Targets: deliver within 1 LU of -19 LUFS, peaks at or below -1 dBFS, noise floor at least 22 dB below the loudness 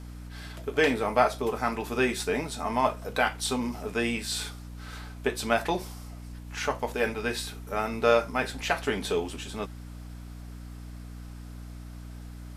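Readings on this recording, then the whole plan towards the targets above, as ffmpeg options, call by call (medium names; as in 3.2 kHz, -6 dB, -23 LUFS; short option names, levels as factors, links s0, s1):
hum 60 Hz; highest harmonic 300 Hz; hum level -39 dBFS; loudness -28.5 LUFS; peak level -6.5 dBFS; loudness target -19.0 LUFS
-> -af "bandreject=f=60:t=h:w=6,bandreject=f=120:t=h:w=6,bandreject=f=180:t=h:w=6,bandreject=f=240:t=h:w=6,bandreject=f=300:t=h:w=6"
-af "volume=2.99,alimiter=limit=0.891:level=0:latency=1"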